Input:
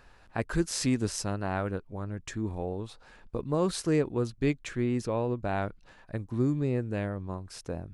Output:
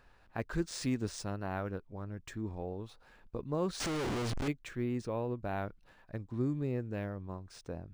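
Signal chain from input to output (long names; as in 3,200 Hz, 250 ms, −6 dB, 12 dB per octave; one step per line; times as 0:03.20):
0:03.80–0:04.48: sign of each sample alone
linearly interpolated sample-rate reduction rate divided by 3×
level −6 dB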